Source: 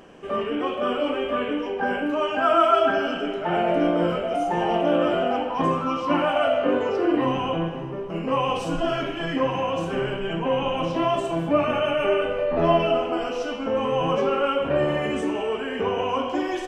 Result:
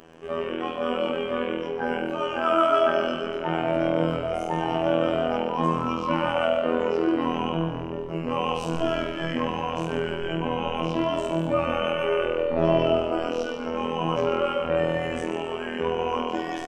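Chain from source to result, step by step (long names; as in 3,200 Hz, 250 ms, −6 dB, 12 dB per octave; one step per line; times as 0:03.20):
phases set to zero 81.9 Hz
echo with shifted repeats 134 ms, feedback 49%, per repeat −42 Hz, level −10 dB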